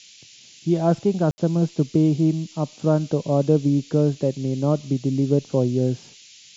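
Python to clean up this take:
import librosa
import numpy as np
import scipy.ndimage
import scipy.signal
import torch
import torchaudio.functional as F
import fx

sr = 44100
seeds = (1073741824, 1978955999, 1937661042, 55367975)

y = fx.fix_ambience(x, sr, seeds[0], print_start_s=0.03, print_end_s=0.53, start_s=1.31, end_s=1.38)
y = fx.noise_reduce(y, sr, print_start_s=0.03, print_end_s=0.53, reduce_db=18.0)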